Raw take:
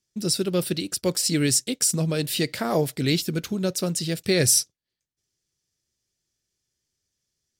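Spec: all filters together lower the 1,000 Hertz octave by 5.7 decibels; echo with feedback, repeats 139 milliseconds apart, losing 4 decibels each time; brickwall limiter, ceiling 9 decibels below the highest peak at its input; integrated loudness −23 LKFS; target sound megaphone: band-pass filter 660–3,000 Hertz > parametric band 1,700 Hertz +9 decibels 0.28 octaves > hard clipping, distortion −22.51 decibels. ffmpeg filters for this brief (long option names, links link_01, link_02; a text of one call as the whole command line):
ffmpeg -i in.wav -af "equalizer=frequency=1000:width_type=o:gain=-7,alimiter=limit=-16dB:level=0:latency=1,highpass=660,lowpass=3000,equalizer=frequency=1700:width_type=o:width=0.28:gain=9,aecho=1:1:139|278|417|556|695|834|973|1112|1251:0.631|0.398|0.25|0.158|0.0994|0.0626|0.0394|0.0249|0.0157,asoftclip=type=hard:threshold=-24dB,volume=11dB" out.wav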